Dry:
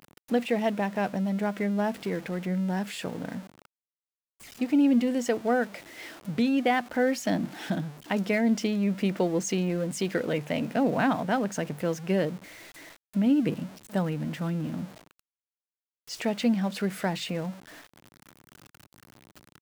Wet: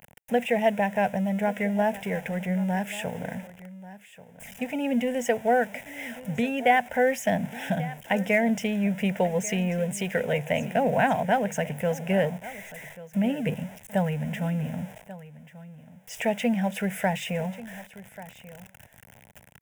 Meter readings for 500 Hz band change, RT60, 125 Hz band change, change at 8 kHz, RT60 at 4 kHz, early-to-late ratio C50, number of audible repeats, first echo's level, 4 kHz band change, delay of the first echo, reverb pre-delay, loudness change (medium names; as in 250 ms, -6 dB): +3.5 dB, no reverb, +2.0 dB, +1.5 dB, no reverb, no reverb, 1, -17.0 dB, -0.5 dB, 1138 ms, no reverb, +1.5 dB